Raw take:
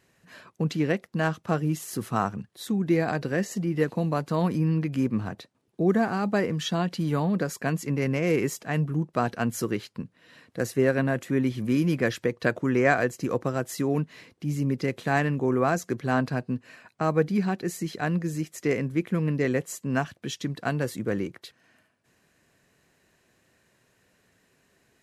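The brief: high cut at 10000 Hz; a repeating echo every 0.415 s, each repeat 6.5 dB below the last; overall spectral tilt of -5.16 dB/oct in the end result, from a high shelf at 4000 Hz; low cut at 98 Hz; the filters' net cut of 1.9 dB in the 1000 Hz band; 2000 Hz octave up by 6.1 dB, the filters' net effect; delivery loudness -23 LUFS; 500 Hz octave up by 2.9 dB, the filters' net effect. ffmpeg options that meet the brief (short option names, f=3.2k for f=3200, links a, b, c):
-af "highpass=98,lowpass=10k,equalizer=f=500:t=o:g=5,equalizer=f=1k:t=o:g=-8.5,equalizer=f=2k:t=o:g=8.5,highshelf=f=4k:g=9,aecho=1:1:415|830|1245|1660|2075|2490:0.473|0.222|0.105|0.0491|0.0231|0.0109,volume=1dB"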